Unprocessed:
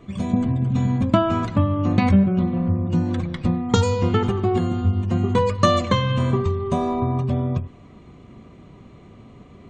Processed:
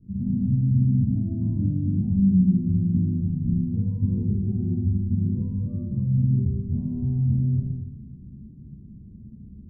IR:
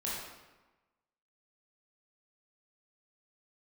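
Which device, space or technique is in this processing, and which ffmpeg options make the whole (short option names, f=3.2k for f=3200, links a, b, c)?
club heard from the street: -filter_complex "[0:a]alimiter=limit=-13.5dB:level=0:latency=1:release=261,lowpass=f=220:w=0.5412,lowpass=f=220:w=1.3066[a];[1:a]atrim=start_sample=2205[b];[a][b]afir=irnorm=-1:irlink=0,equalizer=f=970:t=o:w=0.8:g=7"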